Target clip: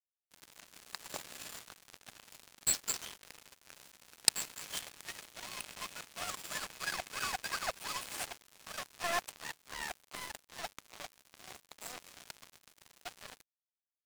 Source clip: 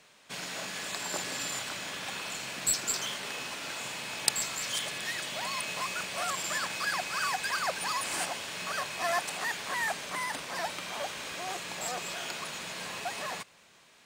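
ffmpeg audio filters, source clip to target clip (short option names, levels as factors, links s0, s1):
-filter_complex "[0:a]acrusher=bits=7:mode=log:mix=0:aa=0.000001,aeval=exprs='sgn(val(0))*max(abs(val(0))-0.0266,0)':c=same,asplit=3[s0][s1][s2];[s0]afade=t=out:st=9.33:d=0.02[s3];[s1]aeval=exprs='val(0)*sin(2*PI*37*n/s)':c=same,afade=t=in:st=9.33:d=0.02,afade=t=out:st=9.94:d=0.02[s4];[s2]afade=t=in:st=9.94:d=0.02[s5];[s3][s4][s5]amix=inputs=3:normalize=0,volume=1.12"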